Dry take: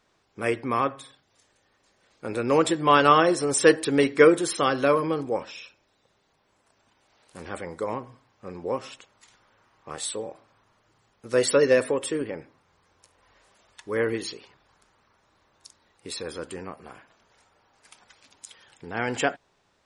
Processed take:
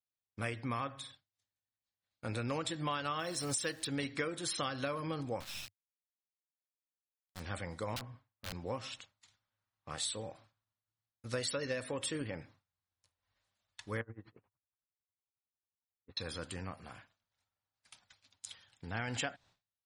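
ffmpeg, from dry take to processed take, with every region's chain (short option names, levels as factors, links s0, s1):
-filter_complex "[0:a]asettb=1/sr,asplit=3[s0][s1][s2];[s0]atrim=end=3.194[s3];[s1]atrim=start=3.19:end=3.87,asetpts=PTS-STARTPTS,afade=t=in:d=0.004:c=qsin,afade=t=out:st=0.676:d=0.004:c=qsin,highshelf=f=3900:g=5.5,acrusher=bits=8:dc=4:mix=0:aa=0.000001[s4];[s2]atrim=start=3.866[s5];[s3][s4]acrossfade=d=0.004:c1=hsin:c2=qsin[s6];[s6][s5]acrossfade=d=0.004:c1=qsin:c2=hsin,asettb=1/sr,asplit=3[s7][s8][s9];[s7]atrim=end=5.404[s10];[s8]atrim=start=5.4:end=7.4,asetpts=PTS-STARTPTS,afade=t=in:d=0.004:c=qsin,afade=t=out:st=1.996:d=0.004:c=qsin,lowpass=5800,aemphasis=mode=production:type=50kf,acrusher=bits=4:dc=4:mix=0:aa=0.000001[s11];[s9]atrim=start=7.396[s12];[s10][s11]acrossfade=d=0.004:c1=hsin:c2=qsin[s13];[s13][s12]acrossfade=d=0.004:c1=qsin:c2=hsin,asettb=1/sr,asplit=3[s14][s15][s16];[s14]atrim=end=7.964[s17];[s15]atrim=start=7.96:end=8.53,asetpts=PTS-STARTPTS,afade=t=in:d=0.004:c=qsin,afade=t=out:st=0.566:d=0.004:c=qsin,lowpass=1800,aemphasis=mode=production:type=75kf,aeval=exprs='(mod(35.5*val(0)+1,2)-1)/35.5':c=same[s18];[s16]atrim=start=8.526[s19];[s17][s18]acrossfade=d=0.004:c1=hsin:c2=qsin[s20];[s20][s19]acrossfade=d=0.004:c1=qsin:c2=hsin,asettb=1/sr,asplit=3[s21][s22][s23];[s21]atrim=end=14.014[s24];[s22]atrim=start=14.01:end=16.17,asetpts=PTS-STARTPTS,afade=t=in:d=0.004:c=qsin,afade=t=out:st=2.156:d=0.004:c=qsin,lowpass=f=1500:w=0.5412,lowpass=f=1500:w=1.3066,acompressor=threshold=0.0141:ratio=2:attack=3.2:release=140:knee=1:detection=peak,aeval=exprs='val(0)*pow(10,-24*(0.5-0.5*cos(2*PI*11*n/s))/20)':c=same[s25];[s23]atrim=start=16.166[s26];[s24][s25]acrossfade=d=0.004:c1=hsin:c2=qsin[s27];[s27][s26]acrossfade=d=0.004:c1=qsin:c2=hsin,agate=range=0.0224:threshold=0.00398:ratio=3:detection=peak,equalizer=f=100:t=o:w=0.67:g=10,equalizer=f=400:t=o:w=0.67:g=-11,equalizer=f=1000:t=o:w=0.67:g=-3,equalizer=f=4000:t=o:w=0.67:g=6,acompressor=threshold=0.0355:ratio=12,volume=0.631"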